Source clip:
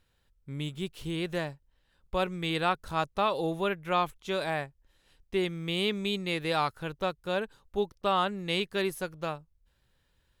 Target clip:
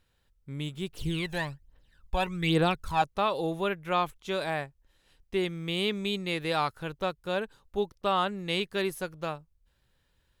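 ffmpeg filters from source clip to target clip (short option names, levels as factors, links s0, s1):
-filter_complex "[0:a]asettb=1/sr,asplit=3[s0][s1][s2];[s0]atrim=end=0.934[s3];[s1]atrim=start=0.93:end=3.02,asetpts=PTS-STARTPTS,afade=t=in:d=0.004:c=qsin,afade=t=out:st=2.086:d=0.004:c=qsin,aphaser=in_gain=1:out_gain=1:delay=1.3:decay=0.69:speed=1.2:type=triangular[s4];[s2]atrim=start=3.016[s5];[s3][s4]acrossfade=d=0.004:c1=hsin:c2=qsin[s6];[s6][s5]acrossfade=d=0.004:c1=qsin:c2=hsin"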